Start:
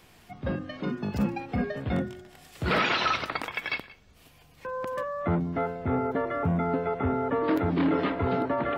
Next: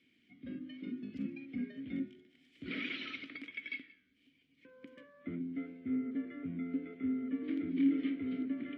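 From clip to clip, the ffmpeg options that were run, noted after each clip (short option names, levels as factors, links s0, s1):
-filter_complex "[0:a]asplit=3[s0][s1][s2];[s0]bandpass=f=270:t=q:w=8,volume=1[s3];[s1]bandpass=f=2290:t=q:w=8,volume=0.501[s4];[s2]bandpass=f=3010:t=q:w=8,volume=0.355[s5];[s3][s4][s5]amix=inputs=3:normalize=0,bandreject=f=155.1:t=h:w=4,bandreject=f=310.2:t=h:w=4,bandreject=f=465.3:t=h:w=4,bandreject=f=620.4:t=h:w=4,bandreject=f=775.5:t=h:w=4,bandreject=f=930.6:t=h:w=4,bandreject=f=1085.7:t=h:w=4,bandreject=f=1240.8:t=h:w=4,bandreject=f=1395.9:t=h:w=4,bandreject=f=1551:t=h:w=4,bandreject=f=1706.1:t=h:w=4,bandreject=f=1861.2:t=h:w=4,bandreject=f=2016.3:t=h:w=4,bandreject=f=2171.4:t=h:w=4,bandreject=f=2326.5:t=h:w=4,bandreject=f=2481.6:t=h:w=4,bandreject=f=2636.7:t=h:w=4,bandreject=f=2791.8:t=h:w=4,bandreject=f=2946.9:t=h:w=4,bandreject=f=3102:t=h:w=4,bandreject=f=3257.1:t=h:w=4,bandreject=f=3412.2:t=h:w=4,bandreject=f=3567.3:t=h:w=4,bandreject=f=3722.4:t=h:w=4,bandreject=f=3877.5:t=h:w=4,bandreject=f=4032.6:t=h:w=4,bandreject=f=4187.7:t=h:w=4,bandreject=f=4342.8:t=h:w=4,bandreject=f=4497.9:t=h:w=4,bandreject=f=4653:t=h:w=4,bandreject=f=4808.1:t=h:w=4,bandreject=f=4963.2:t=h:w=4,flanger=delay=6.7:depth=8:regen=-87:speed=0.86:shape=triangular,volume=1.41"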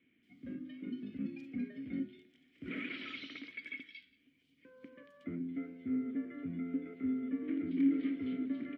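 -filter_complex "[0:a]acrossover=split=2900[s0][s1];[s1]adelay=230[s2];[s0][s2]amix=inputs=2:normalize=0"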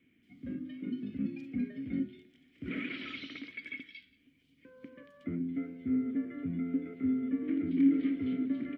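-af "lowshelf=f=150:g=9.5,volume=1.26"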